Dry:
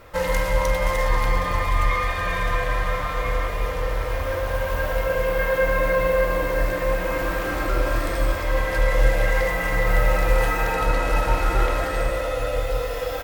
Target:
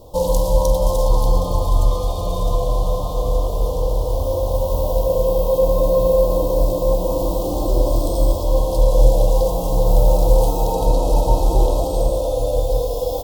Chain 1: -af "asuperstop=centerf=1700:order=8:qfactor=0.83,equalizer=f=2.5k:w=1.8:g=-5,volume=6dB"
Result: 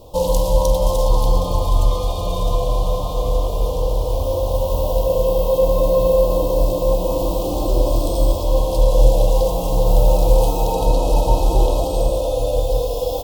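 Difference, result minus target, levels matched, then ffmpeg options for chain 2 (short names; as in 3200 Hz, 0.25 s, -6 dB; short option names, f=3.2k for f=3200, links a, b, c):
2000 Hz band +9.0 dB
-af "asuperstop=centerf=1700:order=8:qfactor=0.83,equalizer=f=2.5k:w=1.8:g=-15,volume=6dB"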